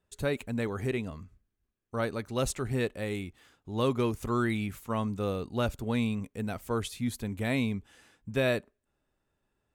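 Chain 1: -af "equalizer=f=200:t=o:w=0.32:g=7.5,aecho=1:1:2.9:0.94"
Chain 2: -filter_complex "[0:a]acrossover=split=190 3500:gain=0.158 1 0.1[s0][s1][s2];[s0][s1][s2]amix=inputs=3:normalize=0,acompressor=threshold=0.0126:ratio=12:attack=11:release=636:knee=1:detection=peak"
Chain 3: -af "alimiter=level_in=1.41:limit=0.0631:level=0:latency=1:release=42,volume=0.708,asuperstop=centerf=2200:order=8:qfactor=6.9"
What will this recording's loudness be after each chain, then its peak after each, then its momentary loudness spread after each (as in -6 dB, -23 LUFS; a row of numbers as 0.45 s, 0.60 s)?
-29.5 LUFS, -45.5 LUFS, -37.5 LUFS; -13.5 dBFS, -25.5 dBFS, -26.5 dBFS; 8 LU, 7 LU, 6 LU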